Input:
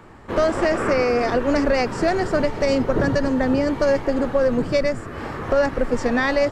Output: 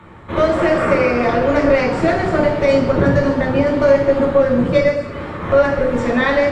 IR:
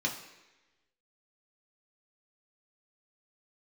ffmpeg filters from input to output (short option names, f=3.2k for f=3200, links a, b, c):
-filter_complex "[0:a]asplit=3[a][b][c];[a]afade=t=out:st=4.9:d=0.02[d];[b]acompressor=threshold=-29dB:ratio=6,afade=t=in:st=4.9:d=0.02,afade=t=out:st=5.4:d=0.02[e];[c]afade=t=in:st=5.4:d=0.02[f];[d][e][f]amix=inputs=3:normalize=0[g];[1:a]atrim=start_sample=2205,asetrate=25578,aresample=44100[h];[g][h]afir=irnorm=-1:irlink=0,volume=-5.5dB"